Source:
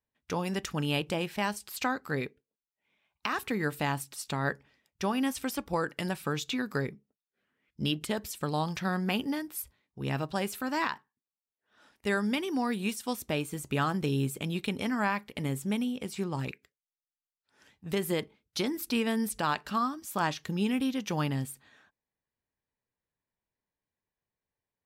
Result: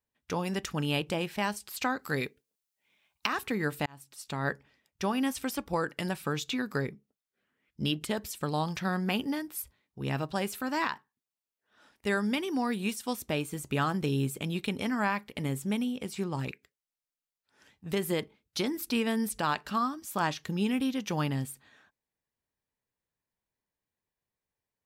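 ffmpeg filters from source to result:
-filter_complex "[0:a]asettb=1/sr,asplit=3[a][b][c];[a]atrim=end=1.994[d];[b]atrim=start=1.99:end=3.27,asetpts=PTS-STARTPTS,afade=t=in:d=0.004:c=qsin,afade=t=out:st=1.276:d=0.004:c=qsin,highshelf=f=3.1k:g=10[e];[c]atrim=start=3.266[f];[d][e]acrossfade=d=0.004:c1=hsin:c2=qsin[g];[g][f]acrossfade=d=0.004:c1=qsin:c2=hsin,asplit=2[h][i];[h]atrim=end=3.86,asetpts=PTS-STARTPTS,afade=t=out:st=3.856:d=0.004:c=hsin[j];[i]atrim=start=3.86,asetpts=PTS-STARTPTS,afade=t=in:d=0.65[k];[j][k]concat=n=2:v=0:a=1"

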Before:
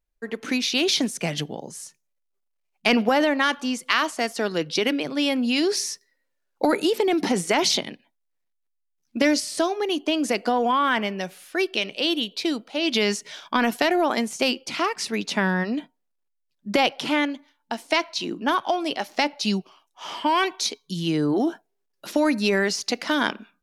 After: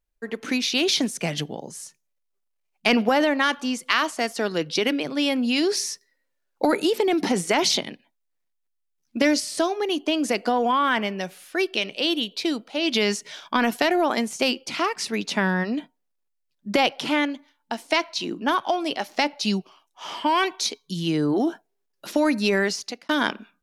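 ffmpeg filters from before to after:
-filter_complex "[0:a]asplit=2[a][b];[a]atrim=end=23.09,asetpts=PTS-STARTPTS,afade=t=out:st=22.65:d=0.44[c];[b]atrim=start=23.09,asetpts=PTS-STARTPTS,afade=t=in:d=0.004:c=hsin[d];[c][d]concat=n=2:v=0:a=1"

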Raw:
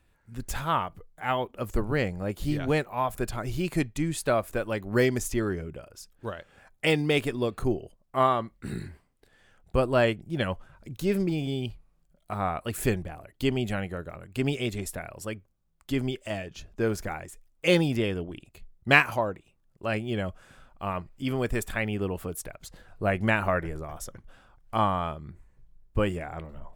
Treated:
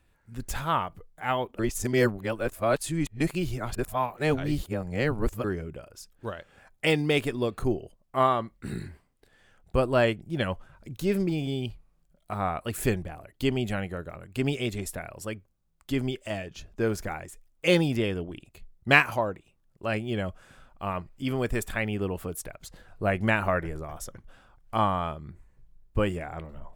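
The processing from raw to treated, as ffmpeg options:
-filter_complex "[0:a]asplit=3[a][b][c];[a]atrim=end=1.592[d];[b]atrim=start=1.588:end=5.442,asetpts=PTS-STARTPTS,areverse[e];[c]atrim=start=5.438[f];[d][e]acrossfade=d=0.004:c1=hsin:c2=hsin[g];[g][f]acrossfade=d=0.004:c1=hsin:c2=hsin"

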